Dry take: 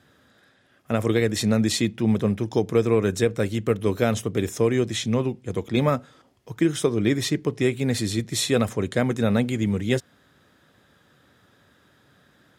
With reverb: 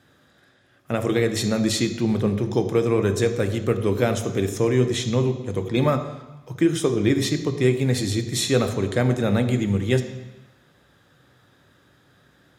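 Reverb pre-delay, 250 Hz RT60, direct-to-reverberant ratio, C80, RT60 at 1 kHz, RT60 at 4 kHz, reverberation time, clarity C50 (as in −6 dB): 3 ms, 1.1 s, 7.0 dB, 11.5 dB, 1.1 s, 1.1 s, 1.1 s, 10.0 dB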